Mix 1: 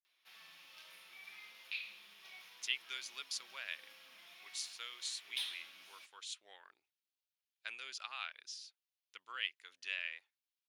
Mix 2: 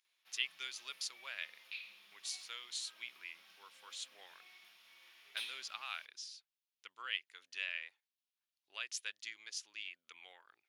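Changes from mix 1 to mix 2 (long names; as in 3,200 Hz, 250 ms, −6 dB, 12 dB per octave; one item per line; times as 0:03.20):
speech: entry −2.30 s
background −4.0 dB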